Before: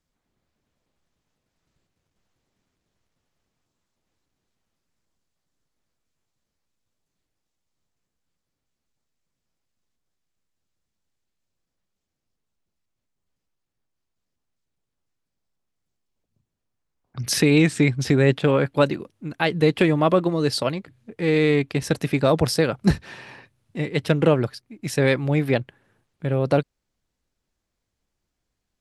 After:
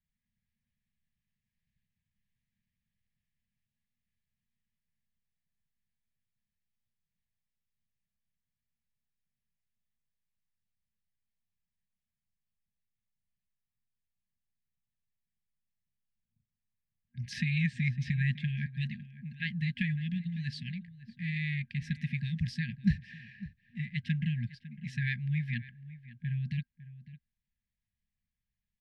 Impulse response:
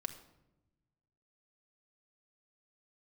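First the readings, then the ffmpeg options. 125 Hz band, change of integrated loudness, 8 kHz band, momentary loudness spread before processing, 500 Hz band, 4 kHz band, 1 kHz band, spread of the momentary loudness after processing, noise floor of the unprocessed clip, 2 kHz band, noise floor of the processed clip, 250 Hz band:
−8.0 dB, −13.0 dB, below −25 dB, 14 LU, below −40 dB, −15.5 dB, below −40 dB, 17 LU, −81 dBFS, −10.0 dB, below −85 dBFS, −13.5 dB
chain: -filter_complex "[0:a]lowpass=2700,afftfilt=real='re*(1-between(b*sr/4096,240,1600))':imag='im*(1-between(b*sr/4096,240,1600))':win_size=4096:overlap=0.75,asplit=2[link_01][link_02];[link_02]adelay=553.9,volume=-16dB,highshelf=frequency=4000:gain=-12.5[link_03];[link_01][link_03]amix=inputs=2:normalize=0,volume=-8dB"

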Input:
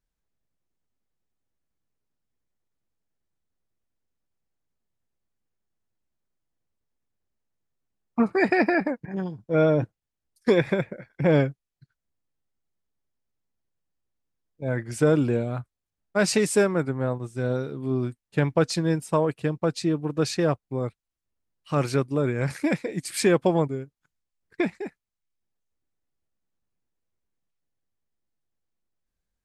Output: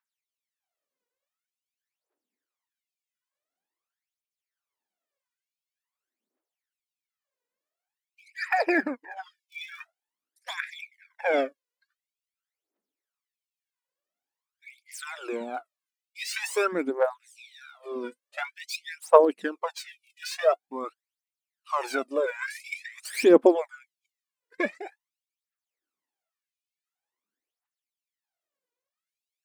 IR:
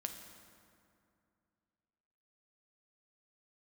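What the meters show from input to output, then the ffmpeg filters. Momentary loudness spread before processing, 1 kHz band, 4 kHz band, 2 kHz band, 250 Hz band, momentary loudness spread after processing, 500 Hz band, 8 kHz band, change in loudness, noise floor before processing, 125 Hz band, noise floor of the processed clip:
10 LU, +2.0 dB, −3.0 dB, −1.0 dB, −6.5 dB, 23 LU, −1.5 dB, −6.5 dB, −2.0 dB, below −85 dBFS, below −30 dB, below −85 dBFS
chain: -filter_complex "[0:a]acrossover=split=180|3200[link_01][link_02][link_03];[link_01]acompressor=threshold=-39dB:ratio=10[link_04];[link_03]aeval=exprs='(tanh(79.4*val(0)+0.7)-tanh(0.7))/79.4':channel_layout=same[link_05];[link_04][link_02][link_05]amix=inputs=3:normalize=0,aphaser=in_gain=1:out_gain=1:delay=2.1:decay=0.78:speed=0.47:type=triangular,afftfilt=real='re*gte(b*sr/1024,210*pow(2200/210,0.5+0.5*sin(2*PI*0.76*pts/sr)))':imag='im*gte(b*sr/1024,210*pow(2200/210,0.5+0.5*sin(2*PI*0.76*pts/sr)))':win_size=1024:overlap=0.75,volume=-1.5dB"

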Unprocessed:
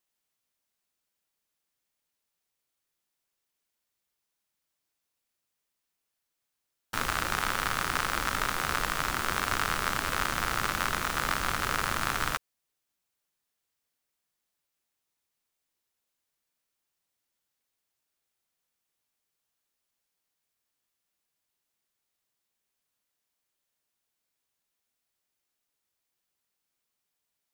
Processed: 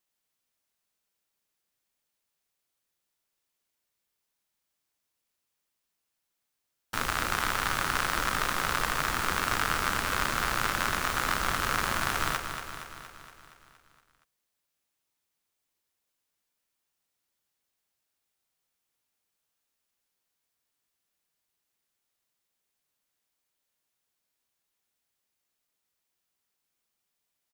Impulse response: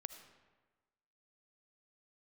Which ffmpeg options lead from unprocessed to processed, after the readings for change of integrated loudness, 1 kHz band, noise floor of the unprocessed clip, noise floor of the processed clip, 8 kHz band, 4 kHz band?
+1.0 dB, +1.0 dB, −84 dBFS, −82 dBFS, +1.0 dB, +1.0 dB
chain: -af "aecho=1:1:234|468|702|936|1170|1404|1638|1872:0.398|0.239|0.143|0.086|0.0516|0.031|0.0186|0.0111"

